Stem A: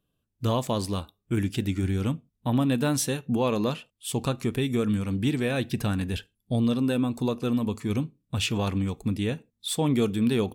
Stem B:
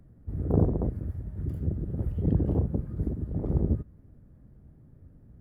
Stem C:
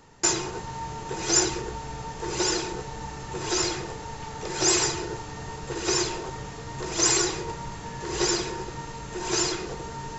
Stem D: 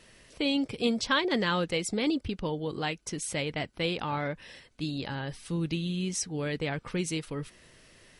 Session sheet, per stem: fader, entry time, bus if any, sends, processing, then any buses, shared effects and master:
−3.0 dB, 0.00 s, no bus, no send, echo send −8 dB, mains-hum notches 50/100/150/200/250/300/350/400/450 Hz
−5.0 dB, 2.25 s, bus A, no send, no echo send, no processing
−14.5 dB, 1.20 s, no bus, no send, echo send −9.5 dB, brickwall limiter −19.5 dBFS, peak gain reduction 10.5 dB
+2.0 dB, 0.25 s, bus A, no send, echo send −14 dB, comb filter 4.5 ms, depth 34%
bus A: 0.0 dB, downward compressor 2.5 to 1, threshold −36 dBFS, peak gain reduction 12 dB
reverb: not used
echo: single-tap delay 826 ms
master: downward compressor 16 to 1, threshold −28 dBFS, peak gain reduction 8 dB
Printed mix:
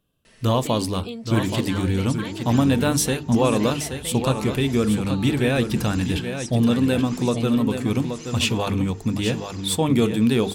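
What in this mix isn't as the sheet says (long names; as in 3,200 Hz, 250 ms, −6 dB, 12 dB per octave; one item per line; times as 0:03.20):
stem A −3.0 dB → +5.5 dB
master: missing downward compressor 16 to 1, threshold −28 dBFS, peak gain reduction 8 dB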